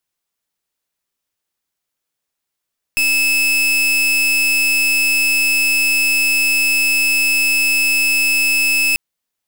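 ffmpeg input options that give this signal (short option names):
-f lavfi -i "aevalsrc='0.178*(2*lt(mod(2610*t,1),0.38)-1)':d=5.99:s=44100"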